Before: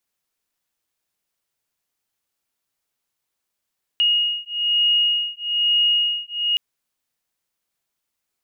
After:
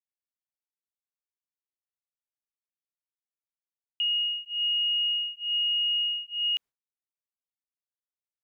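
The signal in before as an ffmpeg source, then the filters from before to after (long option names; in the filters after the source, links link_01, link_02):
-f lavfi -i "aevalsrc='0.1*(sin(2*PI*2870*t)+sin(2*PI*2871.1*t))':duration=2.57:sample_rate=44100"
-af "agate=range=-33dB:threshold=-33dB:ratio=3:detection=peak,highshelf=frequency=2700:gain=-8.5,alimiter=limit=-23dB:level=0:latency=1:release=380"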